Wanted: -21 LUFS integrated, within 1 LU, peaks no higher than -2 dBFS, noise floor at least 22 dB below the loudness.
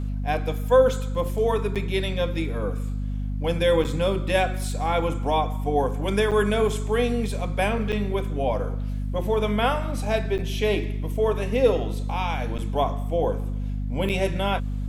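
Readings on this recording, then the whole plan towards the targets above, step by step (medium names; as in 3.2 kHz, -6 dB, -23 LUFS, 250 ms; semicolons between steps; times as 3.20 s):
dropouts 7; longest dropout 7.4 ms; hum 50 Hz; highest harmonic 250 Hz; hum level -25 dBFS; loudness -25.0 LUFS; peak level -7.0 dBFS; loudness target -21.0 LUFS
-> interpolate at 1.75/3.84/6.31/7.92/10.38/12.58/14.09 s, 7.4 ms; hum notches 50/100/150/200/250 Hz; trim +4 dB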